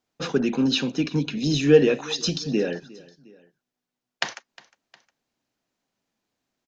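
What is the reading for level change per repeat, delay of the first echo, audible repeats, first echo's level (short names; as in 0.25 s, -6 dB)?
-5.5 dB, 0.358 s, 2, -22.0 dB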